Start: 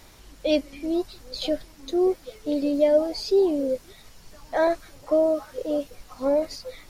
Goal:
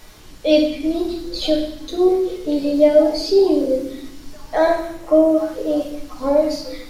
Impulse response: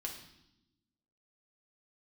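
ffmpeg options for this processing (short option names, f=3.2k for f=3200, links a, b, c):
-filter_complex "[0:a]asettb=1/sr,asplit=3[a][b][c];[a]atrim=end=4.704[d];[b]atrim=start=4.7:end=5.38,asetpts=PTS-STARTPTS,afade=t=in:d=0.004:c=qsin,afade=t=out:st=0.676:d=0.004:c=qsin,equalizer=f=4.5k:w=2.6:g=-7[e];[c]atrim=start=5.376[f];[d][e]acrossfade=d=0.004:c1=hsin:c2=qsin[g];[g][f]acrossfade=d=0.004:c1=qsin:c2=hsin[h];[1:a]atrim=start_sample=2205[i];[h][i]afir=irnorm=-1:irlink=0,volume=7.5dB"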